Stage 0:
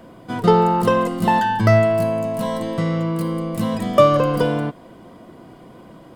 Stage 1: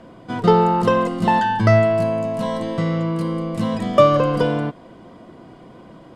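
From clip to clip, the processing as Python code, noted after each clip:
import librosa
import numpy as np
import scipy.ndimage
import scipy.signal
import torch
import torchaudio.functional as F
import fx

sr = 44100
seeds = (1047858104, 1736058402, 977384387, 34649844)

y = scipy.signal.sosfilt(scipy.signal.butter(2, 7200.0, 'lowpass', fs=sr, output='sos'), x)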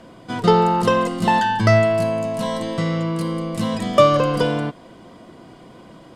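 y = fx.high_shelf(x, sr, hz=2800.0, db=9.0)
y = y * librosa.db_to_amplitude(-1.0)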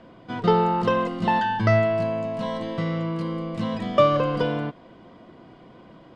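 y = scipy.signal.sosfilt(scipy.signal.butter(2, 3600.0, 'lowpass', fs=sr, output='sos'), x)
y = y * librosa.db_to_amplitude(-4.5)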